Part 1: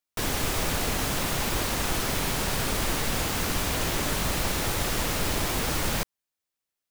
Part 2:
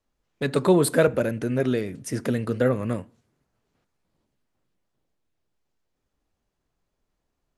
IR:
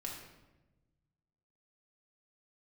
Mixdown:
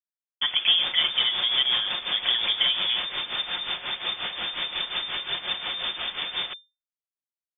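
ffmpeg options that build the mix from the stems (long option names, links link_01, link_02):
-filter_complex "[0:a]aemphasis=mode=production:type=50fm,tremolo=f=5.6:d=0.78,adelay=500,volume=-0.5dB[link_01];[1:a]lowshelf=frequency=160:gain=-4.5,acompressor=threshold=-22dB:ratio=6,volume=2.5dB[link_02];[link_01][link_02]amix=inputs=2:normalize=0,acrusher=bits=5:mix=0:aa=0.000001,lowpass=frequency=3100:width_type=q:width=0.5098,lowpass=frequency=3100:width_type=q:width=0.6013,lowpass=frequency=3100:width_type=q:width=0.9,lowpass=frequency=3100:width_type=q:width=2.563,afreqshift=-3600,aecho=1:1:5.6:0.32"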